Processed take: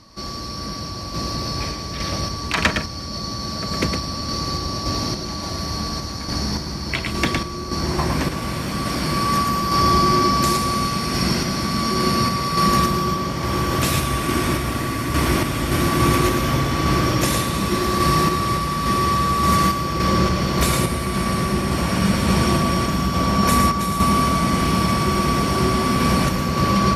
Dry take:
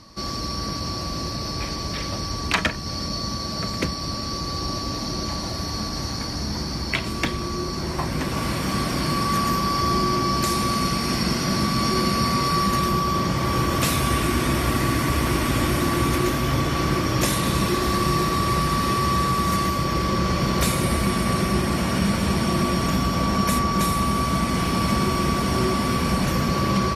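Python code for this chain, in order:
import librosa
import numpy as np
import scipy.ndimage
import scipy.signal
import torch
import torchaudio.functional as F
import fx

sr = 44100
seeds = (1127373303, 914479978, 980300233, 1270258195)

y = x + 10.0 ** (-4.5 / 20.0) * np.pad(x, (int(111 * sr / 1000.0), 0))[:len(x)]
y = fx.tremolo_random(y, sr, seeds[0], hz=3.5, depth_pct=55)
y = y * 10.0 ** (3.5 / 20.0)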